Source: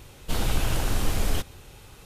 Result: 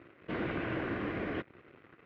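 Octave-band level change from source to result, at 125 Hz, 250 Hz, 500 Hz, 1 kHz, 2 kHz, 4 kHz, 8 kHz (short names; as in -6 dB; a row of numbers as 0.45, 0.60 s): -12.5 dB, -1.0 dB, -2.0 dB, -6.5 dB, -2.5 dB, -17.0 dB, under -40 dB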